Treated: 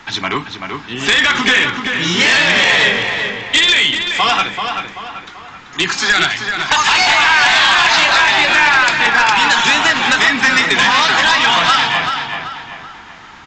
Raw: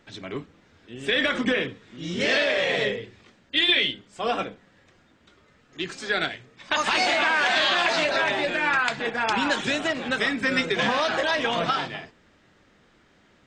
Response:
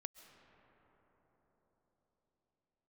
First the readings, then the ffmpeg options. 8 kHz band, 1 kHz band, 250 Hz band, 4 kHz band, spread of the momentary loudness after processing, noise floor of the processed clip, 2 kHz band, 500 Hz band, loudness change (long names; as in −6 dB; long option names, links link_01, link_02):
+17.0 dB, +13.0 dB, +6.0 dB, +13.5 dB, 14 LU, −36 dBFS, +13.5 dB, +2.5 dB, +12.0 dB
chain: -filter_complex "[0:a]lowshelf=frequency=710:width_type=q:width=3:gain=-7,acrossover=split=140|2000[link_01][link_02][link_03];[link_01]acompressor=threshold=-58dB:ratio=4[link_04];[link_02]acompressor=threshold=-36dB:ratio=4[link_05];[link_03]acompressor=threshold=-32dB:ratio=4[link_06];[link_04][link_05][link_06]amix=inputs=3:normalize=0,aresample=16000,aeval=exprs='0.266*sin(PI/2*3.98*val(0)/0.266)':channel_layout=same,aresample=44100,asplit=2[link_07][link_08];[link_08]adelay=385,lowpass=frequency=3500:poles=1,volume=-5.5dB,asplit=2[link_09][link_10];[link_10]adelay=385,lowpass=frequency=3500:poles=1,volume=0.43,asplit=2[link_11][link_12];[link_12]adelay=385,lowpass=frequency=3500:poles=1,volume=0.43,asplit=2[link_13][link_14];[link_14]adelay=385,lowpass=frequency=3500:poles=1,volume=0.43,asplit=2[link_15][link_16];[link_16]adelay=385,lowpass=frequency=3500:poles=1,volume=0.43[link_17];[link_07][link_09][link_11][link_13][link_15][link_17]amix=inputs=6:normalize=0,volume=5dB"